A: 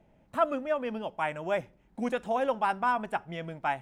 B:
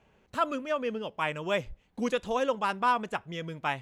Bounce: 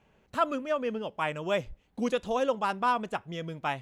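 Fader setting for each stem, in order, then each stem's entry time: −12.5, −1.0 decibels; 0.00, 0.00 seconds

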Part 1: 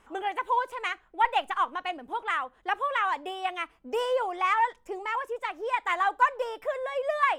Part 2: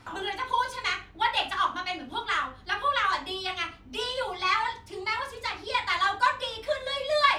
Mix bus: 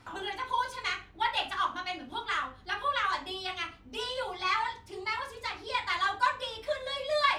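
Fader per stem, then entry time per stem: −18.5, −4.0 decibels; 0.00, 0.00 seconds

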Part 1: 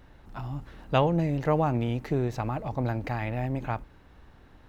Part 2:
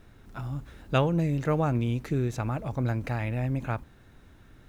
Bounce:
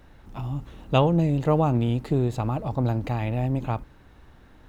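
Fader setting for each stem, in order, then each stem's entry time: +1.0, −4.5 decibels; 0.00, 0.00 seconds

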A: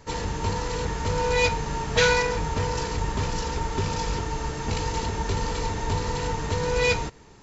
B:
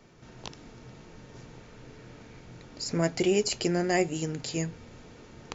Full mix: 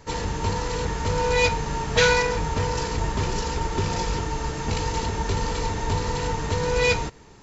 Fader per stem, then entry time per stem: +1.5, −13.0 decibels; 0.00, 0.00 seconds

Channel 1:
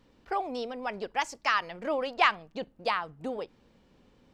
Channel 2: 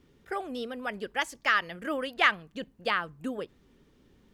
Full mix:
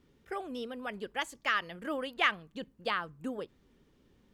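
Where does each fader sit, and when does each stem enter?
−16.0, −4.5 decibels; 0.00, 0.00 seconds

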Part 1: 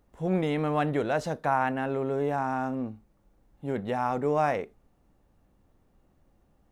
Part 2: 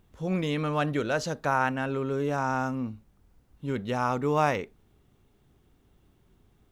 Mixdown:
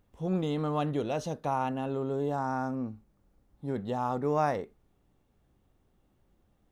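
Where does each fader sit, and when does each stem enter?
−6.0, −10.0 decibels; 0.00, 0.00 seconds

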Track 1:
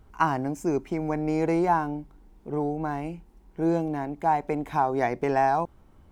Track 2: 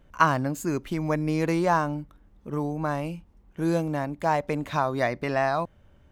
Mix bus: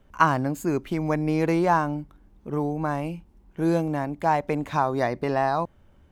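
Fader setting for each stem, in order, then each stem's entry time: −7.0, −1.5 decibels; 0.00, 0.00 seconds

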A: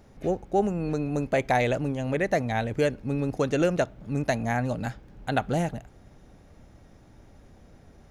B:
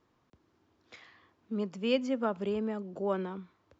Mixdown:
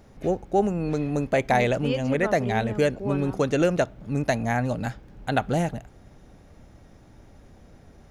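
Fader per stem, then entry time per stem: +2.0, 0.0 decibels; 0.00, 0.00 seconds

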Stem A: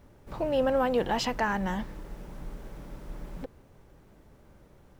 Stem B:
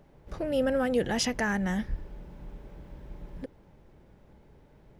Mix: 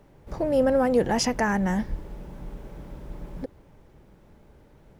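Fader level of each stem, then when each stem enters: −3.5, +1.5 decibels; 0.00, 0.00 seconds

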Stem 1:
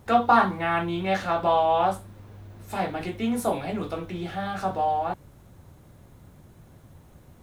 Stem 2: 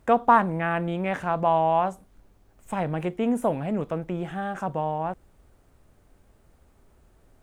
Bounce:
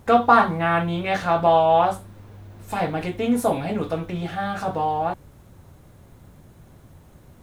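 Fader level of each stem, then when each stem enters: +2.0, −1.0 decibels; 0.00, 0.00 seconds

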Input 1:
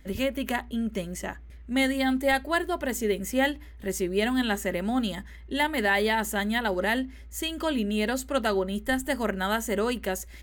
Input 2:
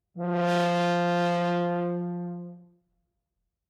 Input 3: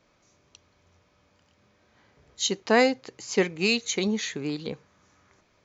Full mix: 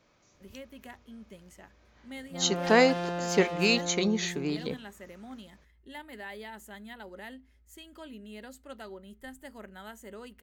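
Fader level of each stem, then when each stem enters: −18.5, −8.0, −1.0 decibels; 0.35, 2.15, 0.00 seconds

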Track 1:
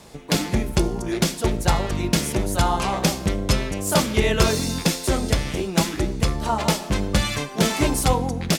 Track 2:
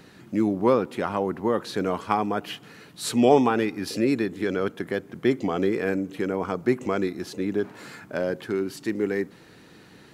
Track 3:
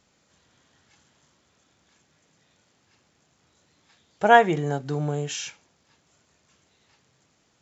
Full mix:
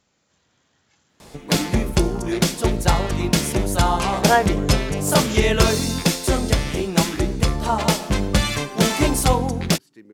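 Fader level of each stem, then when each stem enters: +2.0, −18.5, −2.0 decibels; 1.20, 1.10, 0.00 seconds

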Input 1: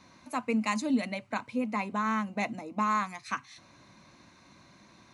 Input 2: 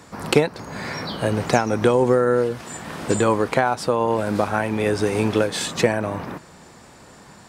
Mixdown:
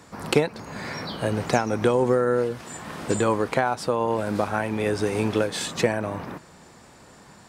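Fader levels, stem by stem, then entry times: −19.5, −3.5 decibels; 0.00, 0.00 seconds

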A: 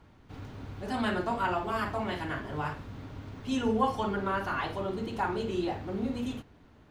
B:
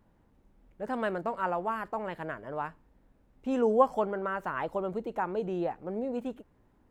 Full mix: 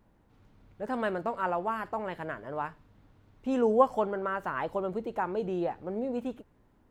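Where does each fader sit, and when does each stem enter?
−19.5, +0.5 decibels; 0.00, 0.00 seconds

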